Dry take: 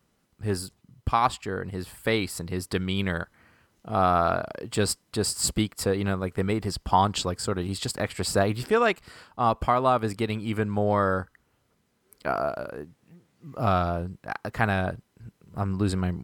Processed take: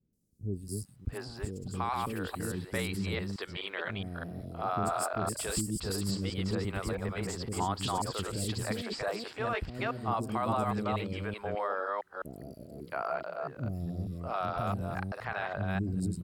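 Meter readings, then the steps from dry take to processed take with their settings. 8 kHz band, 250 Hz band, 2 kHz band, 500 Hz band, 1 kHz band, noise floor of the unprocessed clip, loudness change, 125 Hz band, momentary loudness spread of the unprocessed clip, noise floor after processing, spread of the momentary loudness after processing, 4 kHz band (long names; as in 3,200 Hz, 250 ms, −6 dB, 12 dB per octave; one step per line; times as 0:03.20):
−6.5 dB, −6.0 dB, −6.5 dB, −8.5 dB, −8.0 dB, −70 dBFS, −7.5 dB, −5.5 dB, 12 LU, −51 dBFS, 8 LU, −6.5 dB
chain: delay that plays each chunk backwards 210 ms, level −3 dB
brickwall limiter −16 dBFS, peak gain reduction 8 dB
three-band delay without the direct sound lows, highs, mids 130/670 ms, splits 400/5,700 Hz
level −5.5 dB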